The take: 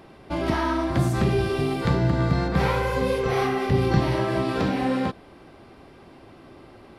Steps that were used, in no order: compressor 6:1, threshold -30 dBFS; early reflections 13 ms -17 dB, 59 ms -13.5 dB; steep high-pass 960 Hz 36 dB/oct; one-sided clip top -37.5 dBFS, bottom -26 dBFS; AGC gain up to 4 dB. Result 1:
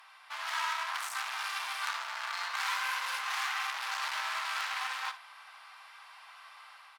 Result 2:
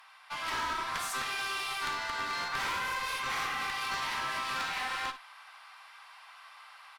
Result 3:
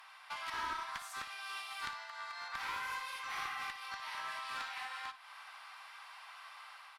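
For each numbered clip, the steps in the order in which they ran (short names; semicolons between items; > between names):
one-sided clip > steep high-pass > compressor > AGC > early reflections; steep high-pass > one-sided clip > early reflections > AGC > compressor; AGC > compressor > steep high-pass > one-sided clip > early reflections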